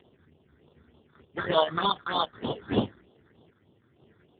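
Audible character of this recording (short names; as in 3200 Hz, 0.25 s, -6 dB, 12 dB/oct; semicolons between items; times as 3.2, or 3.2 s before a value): aliases and images of a low sample rate 2400 Hz, jitter 0%; random-step tremolo 4 Hz; phasing stages 6, 3.3 Hz, lowest notch 700–1800 Hz; AMR-NB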